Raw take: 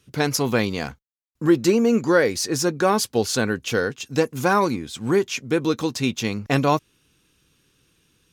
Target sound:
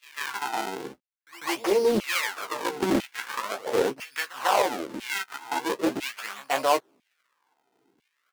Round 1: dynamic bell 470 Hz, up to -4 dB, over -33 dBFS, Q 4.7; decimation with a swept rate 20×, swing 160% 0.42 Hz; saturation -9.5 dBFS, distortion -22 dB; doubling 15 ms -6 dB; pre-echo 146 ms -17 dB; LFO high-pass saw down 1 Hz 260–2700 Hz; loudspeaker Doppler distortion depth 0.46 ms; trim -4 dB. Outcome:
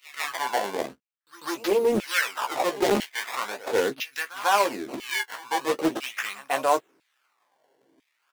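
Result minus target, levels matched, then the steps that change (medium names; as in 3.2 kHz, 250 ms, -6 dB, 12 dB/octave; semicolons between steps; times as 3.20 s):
decimation with a swept rate: distortion -6 dB
change: decimation with a swept rate 44×, swing 160% 0.42 Hz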